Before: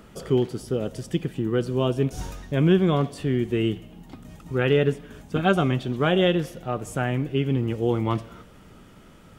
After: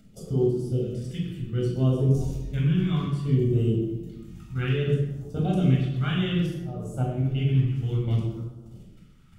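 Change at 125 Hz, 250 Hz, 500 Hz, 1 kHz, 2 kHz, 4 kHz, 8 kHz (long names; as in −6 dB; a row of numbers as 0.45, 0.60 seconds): +3.0 dB, −2.5 dB, −6.0 dB, −10.0 dB, −8.0 dB, −5.5 dB, can't be measured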